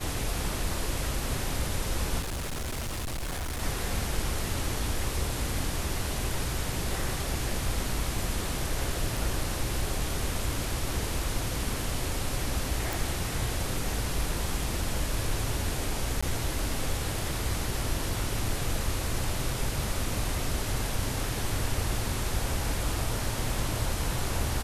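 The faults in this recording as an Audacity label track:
2.200000	3.630000	clipped -30 dBFS
9.170000	9.170000	gap 3 ms
12.930000	12.930000	pop
16.210000	16.230000	gap 15 ms

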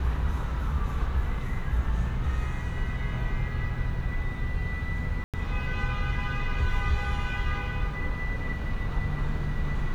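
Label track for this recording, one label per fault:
5.240000	5.340000	gap 97 ms

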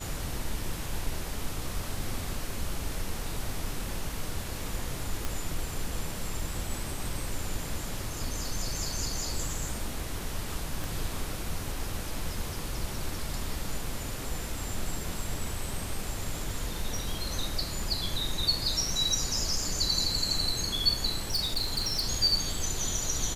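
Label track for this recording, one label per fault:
5.250000	5.250000	pop
10.840000	10.840000	pop
21.300000	22.030000	clipped -24 dBFS

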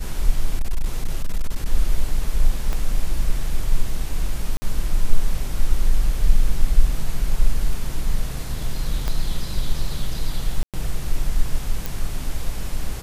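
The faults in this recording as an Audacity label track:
0.590000	1.660000	clipped -15 dBFS
2.730000	2.730000	pop -13 dBFS
4.570000	4.620000	gap 50 ms
9.080000	9.080000	pop -11 dBFS
10.630000	10.740000	gap 0.107 s
11.860000	11.860000	pop

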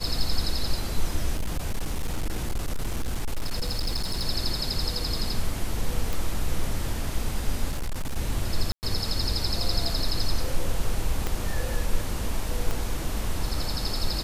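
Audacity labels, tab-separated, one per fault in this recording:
1.340000	4.250000	clipped -22.5 dBFS
6.130000	6.130000	pop
7.700000	8.170000	clipped -24.5 dBFS
8.720000	8.830000	gap 0.109 s
11.270000	11.270000	pop -13 dBFS
12.710000	12.710000	pop -15 dBFS

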